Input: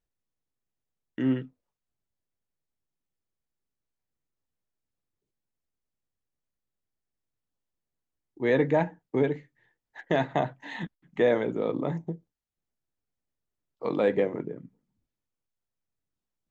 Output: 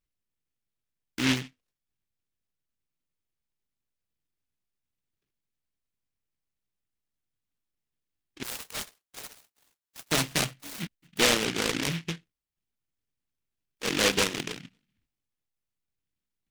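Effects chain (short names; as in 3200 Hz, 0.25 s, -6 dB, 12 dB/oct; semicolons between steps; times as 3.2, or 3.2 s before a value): 8.43–10.12 inverse Chebyshev high-pass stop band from 280 Hz, stop band 60 dB; dynamic EQ 2100 Hz, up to -5 dB, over -42 dBFS, Q 0.85; noise-modulated delay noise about 2400 Hz, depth 0.39 ms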